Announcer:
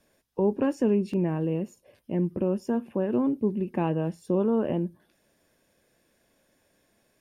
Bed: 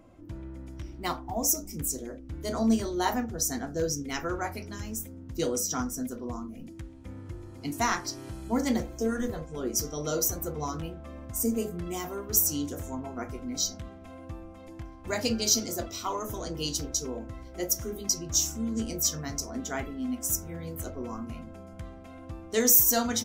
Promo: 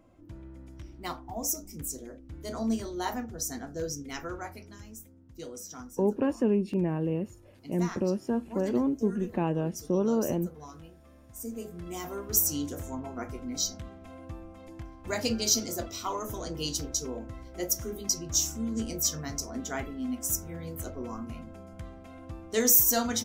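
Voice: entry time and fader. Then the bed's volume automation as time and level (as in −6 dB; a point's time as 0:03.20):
5.60 s, −2.0 dB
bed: 0:04.22 −5 dB
0:05.22 −13 dB
0:11.31 −13 dB
0:12.13 −1 dB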